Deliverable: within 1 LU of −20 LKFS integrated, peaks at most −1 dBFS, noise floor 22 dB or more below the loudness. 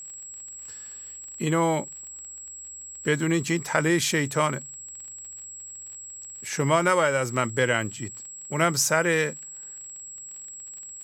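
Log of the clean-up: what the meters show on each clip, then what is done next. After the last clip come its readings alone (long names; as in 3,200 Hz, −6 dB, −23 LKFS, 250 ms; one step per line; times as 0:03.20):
crackle rate 28 per second; interfering tone 7,700 Hz; level of the tone −38 dBFS; integrated loudness −24.5 LKFS; sample peak −6.0 dBFS; target loudness −20.0 LKFS
→ click removal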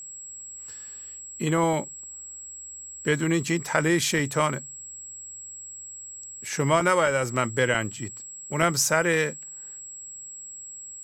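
crackle rate 0.091 per second; interfering tone 7,700 Hz; level of the tone −38 dBFS
→ notch filter 7,700 Hz, Q 30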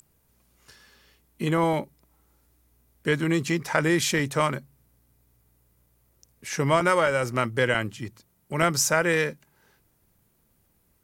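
interfering tone none found; integrated loudness −24.5 LKFS; sample peak −6.5 dBFS; target loudness −20.0 LKFS
→ level +4.5 dB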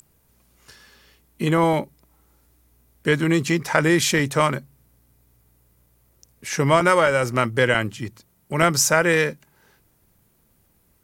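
integrated loudness −20.0 LKFS; sample peak −2.0 dBFS; background noise floor −63 dBFS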